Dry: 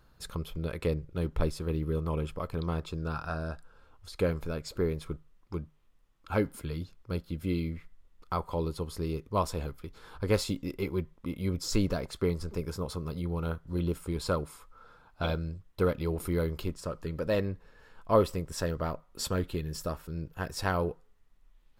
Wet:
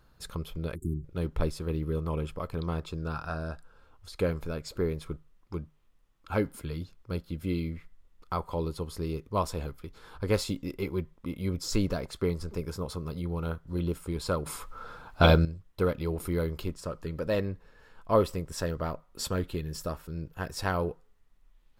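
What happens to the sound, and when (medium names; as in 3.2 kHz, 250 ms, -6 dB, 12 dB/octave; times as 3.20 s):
0.75–1.04 s: spectral selection erased 390–6600 Hz
14.46–15.45 s: gain +11.5 dB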